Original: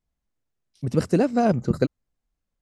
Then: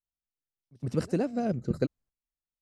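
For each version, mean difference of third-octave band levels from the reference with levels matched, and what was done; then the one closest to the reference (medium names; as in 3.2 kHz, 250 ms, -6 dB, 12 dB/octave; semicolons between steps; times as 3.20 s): 2.0 dB: gate -50 dBFS, range -13 dB; rotary cabinet horn 0.85 Hz; reverse echo 117 ms -23 dB; trim -5.5 dB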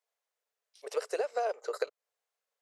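13.0 dB: Chebyshev high-pass 430 Hz, order 6; compression 6:1, threshold -31 dBFS, peak gain reduction 11.5 dB; buffer glitch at 1.85 s, samples 1024, times 1; trim +2 dB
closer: first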